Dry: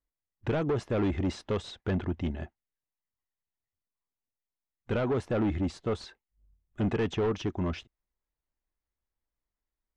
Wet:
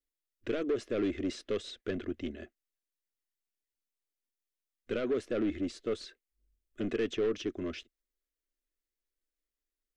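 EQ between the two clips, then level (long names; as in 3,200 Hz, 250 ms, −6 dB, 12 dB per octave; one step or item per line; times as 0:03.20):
parametric band 67 Hz −12.5 dB 1.6 octaves
phaser with its sweep stopped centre 360 Hz, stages 4
0.0 dB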